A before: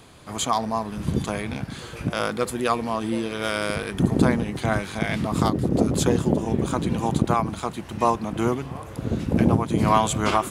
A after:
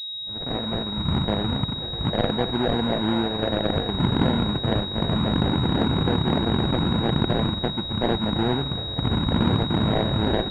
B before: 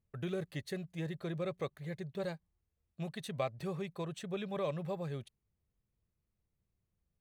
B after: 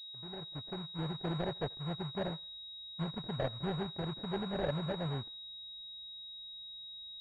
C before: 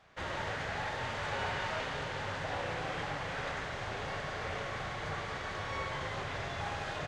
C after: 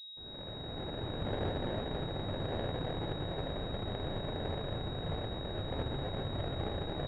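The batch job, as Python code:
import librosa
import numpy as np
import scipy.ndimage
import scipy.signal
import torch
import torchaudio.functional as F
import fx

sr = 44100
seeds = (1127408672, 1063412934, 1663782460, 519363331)

p1 = fx.fade_in_head(x, sr, length_s=1.29)
p2 = fx.tilt_eq(p1, sr, slope=-1.5)
p3 = fx.over_compress(p2, sr, threshold_db=-23.0, ratio=-1.0)
p4 = p2 + F.gain(torch.from_numpy(p3), 2.0).numpy()
p5 = fx.sample_hold(p4, sr, seeds[0], rate_hz=1200.0, jitter_pct=20)
p6 = p5 + fx.echo_thinned(p5, sr, ms=84, feedback_pct=46, hz=690.0, wet_db=-23.0, dry=0)
p7 = fx.pwm(p6, sr, carrier_hz=3800.0)
y = F.gain(torch.from_numpy(p7), -7.5).numpy()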